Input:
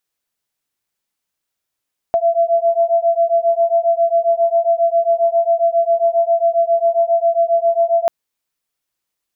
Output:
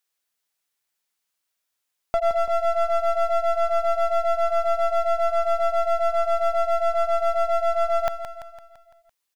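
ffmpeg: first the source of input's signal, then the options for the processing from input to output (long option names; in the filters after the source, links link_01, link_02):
-f lavfi -i "aevalsrc='0.178*(sin(2*PI*671*t)+sin(2*PI*678.4*t))':duration=5.94:sample_rate=44100"
-filter_complex "[0:a]lowshelf=frequency=460:gain=-10.5,aeval=exprs='clip(val(0),-1,0.0596)':channel_layout=same,asplit=2[link_01][link_02];[link_02]aecho=0:1:169|338|507|676|845|1014:0.335|0.178|0.0941|0.0499|0.0264|0.014[link_03];[link_01][link_03]amix=inputs=2:normalize=0"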